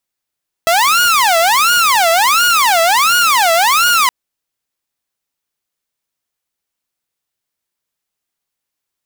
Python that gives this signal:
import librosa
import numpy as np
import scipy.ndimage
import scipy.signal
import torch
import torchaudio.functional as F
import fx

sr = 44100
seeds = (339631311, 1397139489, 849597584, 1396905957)

y = fx.siren(sr, length_s=3.42, kind='wail', low_hz=658.0, high_hz=1440.0, per_s=1.4, wave='saw', level_db=-6.5)